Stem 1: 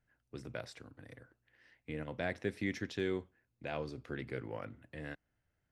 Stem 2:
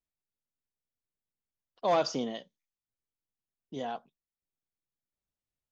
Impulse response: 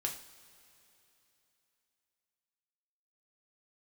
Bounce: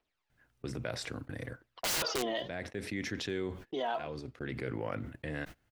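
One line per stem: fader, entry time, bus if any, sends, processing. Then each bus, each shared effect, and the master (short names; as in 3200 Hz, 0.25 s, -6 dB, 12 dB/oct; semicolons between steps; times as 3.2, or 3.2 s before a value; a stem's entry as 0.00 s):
-7.0 dB, 0.30 s, no send, auto duck -15 dB, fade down 0.20 s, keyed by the second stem
0.0 dB, 0.00 s, no send, three-band isolator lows -14 dB, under 320 Hz, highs -23 dB, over 4300 Hz; phaser 0.64 Hz, delay 3.3 ms, feedback 59%; wrapped overs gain 27 dB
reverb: off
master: gate -60 dBFS, range -26 dB; fast leveller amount 70%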